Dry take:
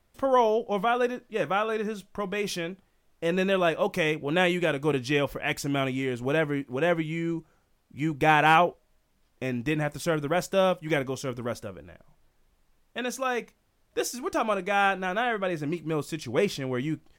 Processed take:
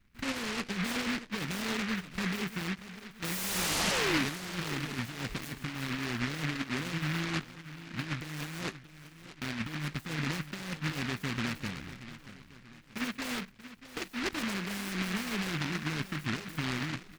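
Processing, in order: de-esser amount 70%; FFT filter 100 Hz 0 dB, 220 Hz +7 dB, 1.1 kHz -17 dB, 3.9 kHz +11 dB; compressor with a negative ratio -29 dBFS, ratio -0.5; peak limiter -21.5 dBFS, peak gain reduction 8 dB; painted sound fall, 3.24–4.25 s, 250–3100 Hz -26 dBFS; tape spacing loss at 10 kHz 43 dB; on a send: feedback delay 633 ms, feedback 46%, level -14 dB; on the sum: delay time shaken by noise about 1.8 kHz, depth 0.44 ms; trim -1.5 dB

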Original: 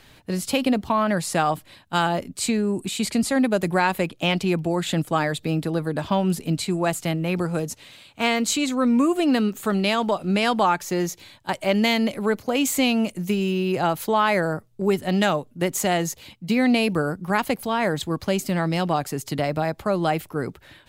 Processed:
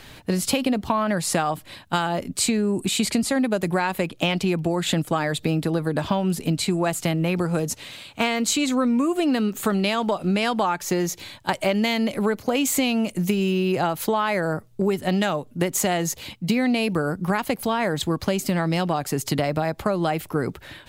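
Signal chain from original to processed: compression, threshold -26 dBFS, peak gain reduction 11 dB; trim +7 dB

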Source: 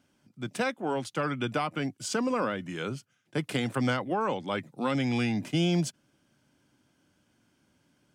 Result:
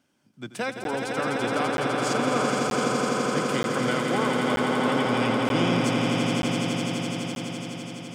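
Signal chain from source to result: high-pass 160 Hz 6 dB/octave; echo with a slow build-up 84 ms, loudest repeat 8, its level -5 dB; crackling interface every 0.93 s, samples 512, zero, from 0.84 s

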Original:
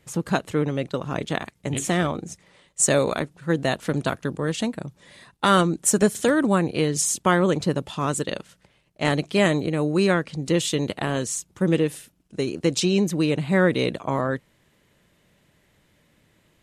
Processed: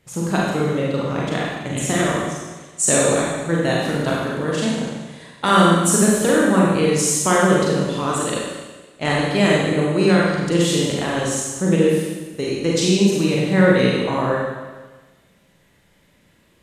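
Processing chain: Schroeder reverb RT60 1.3 s, combs from 32 ms, DRR -4.5 dB; trim -1 dB

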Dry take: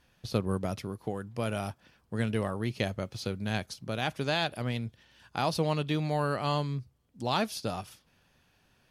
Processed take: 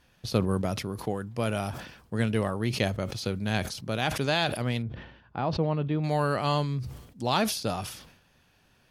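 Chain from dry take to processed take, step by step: 4.82–6.04 s: tape spacing loss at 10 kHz 44 dB; decay stretcher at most 75 dB/s; trim +3 dB

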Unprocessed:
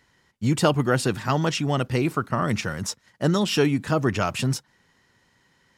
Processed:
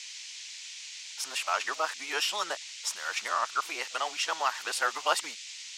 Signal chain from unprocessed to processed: reverse the whole clip; ladder high-pass 660 Hz, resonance 20%; band noise 2.1–7.1 kHz -46 dBFS; trim +2.5 dB

